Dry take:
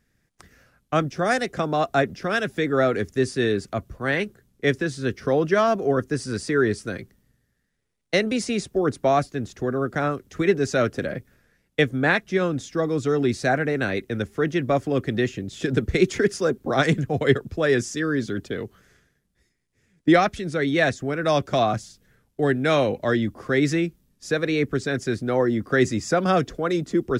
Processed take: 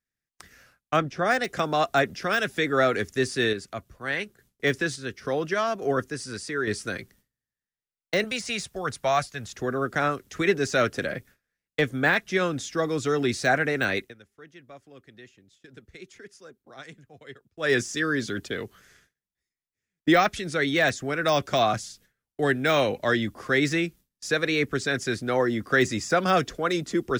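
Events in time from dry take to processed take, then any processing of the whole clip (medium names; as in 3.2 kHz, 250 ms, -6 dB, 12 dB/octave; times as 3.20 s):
0.96–1.44 s: low-pass 2.3 kHz 6 dB/octave
3.53–6.71 s: random-step tremolo
8.24–9.53 s: peaking EQ 320 Hz -13 dB 1.1 oct
13.98–17.72 s: dip -23.5 dB, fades 0.16 s
whole clip: gate with hold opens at -47 dBFS; de-esser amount 80%; tilt shelf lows -5 dB, about 860 Hz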